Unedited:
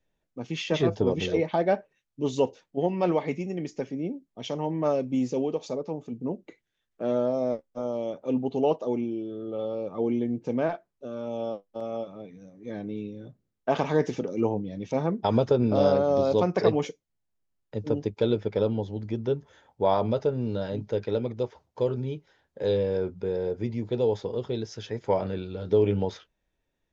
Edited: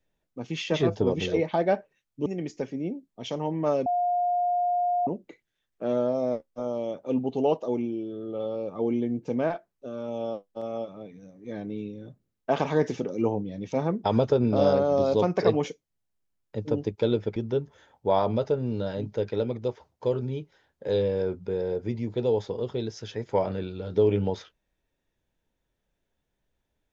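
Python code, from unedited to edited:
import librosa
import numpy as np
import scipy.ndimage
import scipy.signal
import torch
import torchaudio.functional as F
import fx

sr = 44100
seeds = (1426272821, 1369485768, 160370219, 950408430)

y = fx.edit(x, sr, fx.cut(start_s=2.26, length_s=1.19),
    fx.bleep(start_s=5.05, length_s=1.21, hz=710.0, db=-22.0),
    fx.cut(start_s=18.55, length_s=0.56), tone=tone)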